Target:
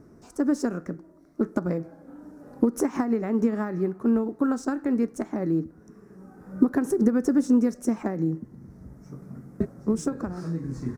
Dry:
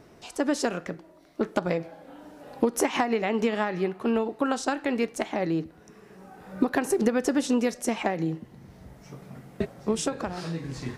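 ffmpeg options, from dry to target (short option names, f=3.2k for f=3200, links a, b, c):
-af "firequalizer=gain_entry='entry(150,0);entry(250,3);entry(460,-5);entry(750,-11);entry(1300,-5);entry(3000,-27);entry(5600,-9)':delay=0.05:min_phase=1,volume=2.5dB" -ar 44100 -c:a adpcm_ima_wav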